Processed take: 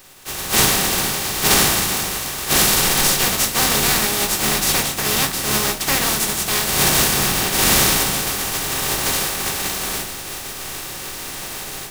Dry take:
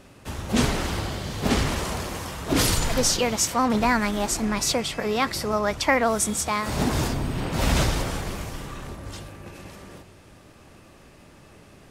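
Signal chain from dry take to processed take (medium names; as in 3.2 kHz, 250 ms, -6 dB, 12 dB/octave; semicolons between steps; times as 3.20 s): spectral contrast reduction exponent 0.19; dynamic bell 190 Hz, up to +5 dB, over -46 dBFS, Q 1.7; in parallel at +1.5 dB: peak limiter -12.5 dBFS, peak gain reduction 8.5 dB; on the sum: level rider gain up to 15.5 dB; reverberation, pre-delay 3 ms, DRR 2 dB; trim -4.5 dB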